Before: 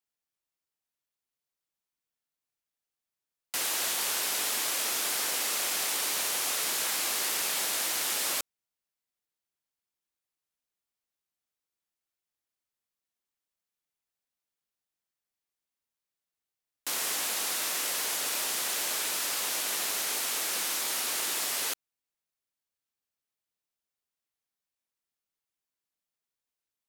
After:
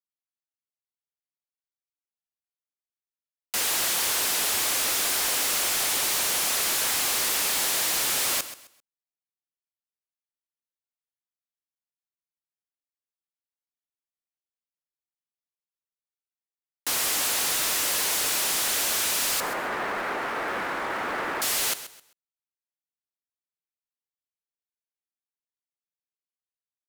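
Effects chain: 19.40–21.42 s: low-pass 1.8 kHz 24 dB/octave; waveshaping leveller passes 5; feedback delay 131 ms, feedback 27%, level -13.5 dB; trim -5.5 dB

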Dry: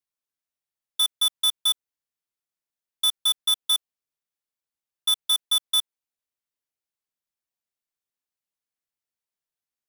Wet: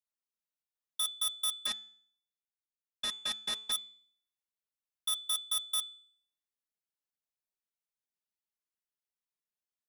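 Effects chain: 1.66–3.72 s: CVSD coder 64 kbps; comb 4.7 ms, depth 45%; de-hum 217.7 Hz, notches 39; trim -8.5 dB

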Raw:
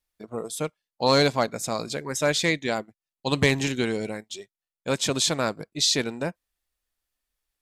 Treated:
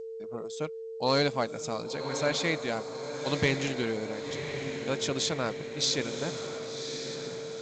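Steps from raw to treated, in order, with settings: echo that smears into a reverb 1084 ms, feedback 54%, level -8 dB; whistle 450 Hz -31 dBFS; trim -6 dB; G.722 64 kbps 16 kHz

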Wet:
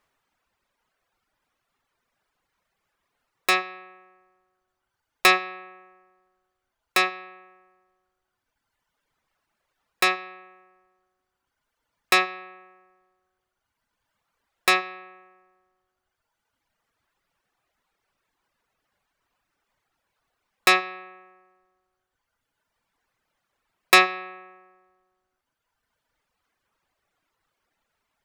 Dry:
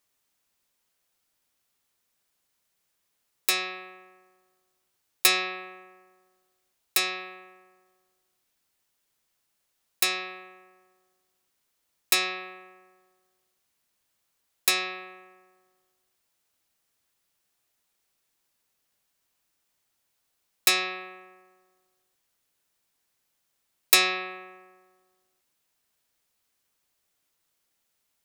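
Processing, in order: tilt EQ -2.5 dB/octave; reverb removal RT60 1.8 s; peaking EQ 1.3 kHz +12 dB 2.8 oct; trim +1 dB

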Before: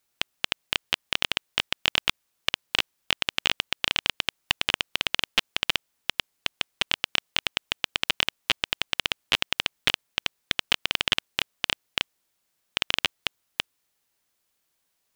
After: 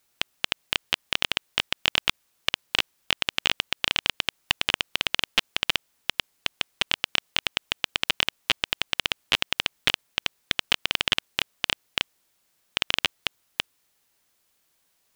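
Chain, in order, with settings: loudness maximiser +6.5 dB; trim -1 dB

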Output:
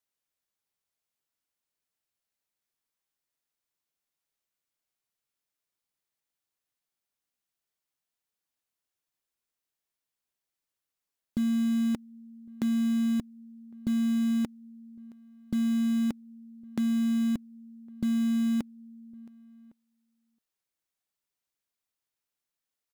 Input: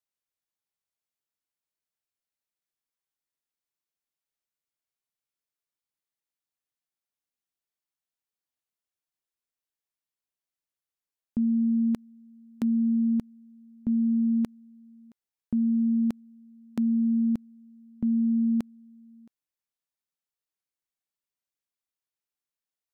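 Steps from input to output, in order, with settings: dynamic bell 250 Hz, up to -4 dB, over -40 dBFS, Q 5.3; in parallel at -7 dB: integer overflow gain 37 dB; on the sum: echo from a far wall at 190 m, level -27 dB

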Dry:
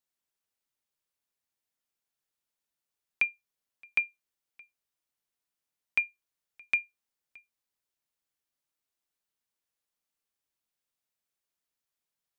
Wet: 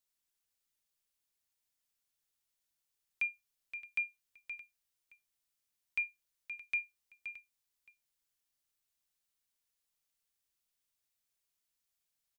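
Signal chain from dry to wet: bass shelf 89 Hz +12 dB; peak limiter -26 dBFS, peak gain reduction 11 dB; treble shelf 2 kHz +9 dB; on a send: delay 522 ms -10 dB; on the sum: trim -5.5 dB

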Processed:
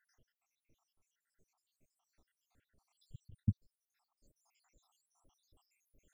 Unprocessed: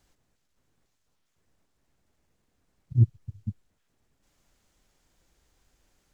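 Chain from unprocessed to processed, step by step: random holes in the spectrogram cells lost 84%; 3.00–3.40 s: compressor with a negative ratio -52 dBFS; trim +2.5 dB

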